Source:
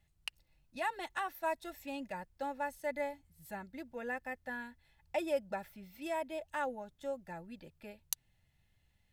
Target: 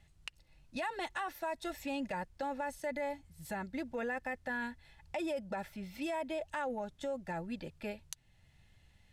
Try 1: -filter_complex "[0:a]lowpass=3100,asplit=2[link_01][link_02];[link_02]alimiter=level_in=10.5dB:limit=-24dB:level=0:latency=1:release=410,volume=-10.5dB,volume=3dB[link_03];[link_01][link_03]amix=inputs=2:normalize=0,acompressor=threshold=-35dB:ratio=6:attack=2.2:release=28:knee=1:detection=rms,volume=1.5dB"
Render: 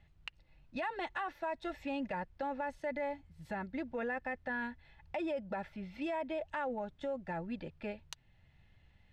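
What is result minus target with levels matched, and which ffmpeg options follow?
8,000 Hz band −9.5 dB
-filter_complex "[0:a]lowpass=9600,asplit=2[link_01][link_02];[link_02]alimiter=level_in=10.5dB:limit=-24dB:level=0:latency=1:release=410,volume=-10.5dB,volume=3dB[link_03];[link_01][link_03]amix=inputs=2:normalize=0,acompressor=threshold=-35dB:ratio=6:attack=2.2:release=28:knee=1:detection=rms,volume=1.5dB"

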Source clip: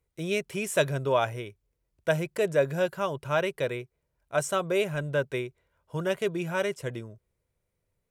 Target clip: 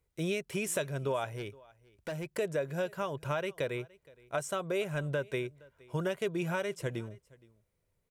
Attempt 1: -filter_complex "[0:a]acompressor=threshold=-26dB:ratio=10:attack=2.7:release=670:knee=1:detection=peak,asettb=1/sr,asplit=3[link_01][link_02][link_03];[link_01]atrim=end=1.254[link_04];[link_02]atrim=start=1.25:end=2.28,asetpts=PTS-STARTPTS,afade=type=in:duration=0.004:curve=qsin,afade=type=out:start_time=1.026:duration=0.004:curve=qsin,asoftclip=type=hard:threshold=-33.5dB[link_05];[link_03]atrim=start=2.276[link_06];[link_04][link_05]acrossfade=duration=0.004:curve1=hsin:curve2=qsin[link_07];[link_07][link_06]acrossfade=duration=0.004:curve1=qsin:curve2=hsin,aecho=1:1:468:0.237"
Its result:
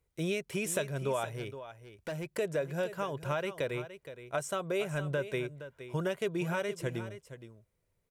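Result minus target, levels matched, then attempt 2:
echo-to-direct +11.5 dB
-filter_complex "[0:a]acompressor=threshold=-26dB:ratio=10:attack=2.7:release=670:knee=1:detection=peak,asettb=1/sr,asplit=3[link_01][link_02][link_03];[link_01]atrim=end=1.254[link_04];[link_02]atrim=start=1.25:end=2.28,asetpts=PTS-STARTPTS,afade=type=in:duration=0.004:curve=qsin,afade=type=out:start_time=1.026:duration=0.004:curve=qsin,asoftclip=type=hard:threshold=-33.5dB[link_05];[link_03]atrim=start=2.276[link_06];[link_04][link_05]acrossfade=duration=0.004:curve1=hsin:curve2=qsin[link_07];[link_07][link_06]acrossfade=duration=0.004:curve1=qsin:curve2=hsin,aecho=1:1:468:0.0631"

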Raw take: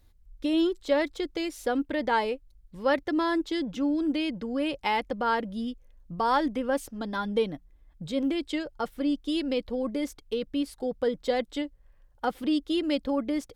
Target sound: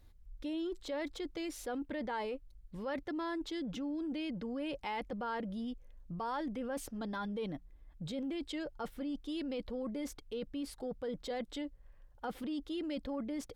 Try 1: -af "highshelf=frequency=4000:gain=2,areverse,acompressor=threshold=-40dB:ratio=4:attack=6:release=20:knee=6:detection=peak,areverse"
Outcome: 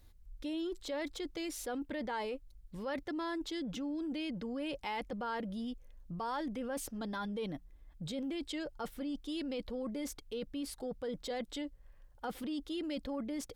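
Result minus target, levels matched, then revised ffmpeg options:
8,000 Hz band +4.0 dB
-af "highshelf=frequency=4000:gain=-4.5,areverse,acompressor=threshold=-40dB:ratio=4:attack=6:release=20:knee=6:detection=peak,areverse"

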